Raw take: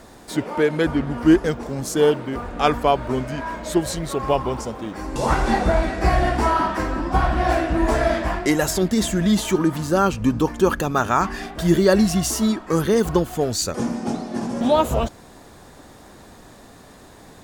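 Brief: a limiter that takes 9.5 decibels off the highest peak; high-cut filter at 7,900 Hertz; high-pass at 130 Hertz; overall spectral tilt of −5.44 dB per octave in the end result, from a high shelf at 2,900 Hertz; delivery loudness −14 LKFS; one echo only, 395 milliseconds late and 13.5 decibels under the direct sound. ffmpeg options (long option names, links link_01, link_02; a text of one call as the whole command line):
ffmpeg -i in.wav -af "highpass=130,lowpass=7900,highshelf=frequency=2900:gain=-3.5,alimiter=limit=-13.5dB:level=0:latency=1,aecho=1:1:395:0.211,volume=10.5dB" out.wav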